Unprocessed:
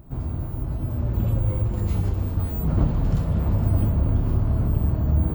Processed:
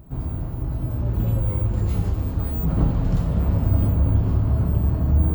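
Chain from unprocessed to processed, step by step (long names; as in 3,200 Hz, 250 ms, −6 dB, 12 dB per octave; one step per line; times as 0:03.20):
coupled-rooms reverb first 0.58 s, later 4.7 s, from −17 dB, DRR 5.5 dB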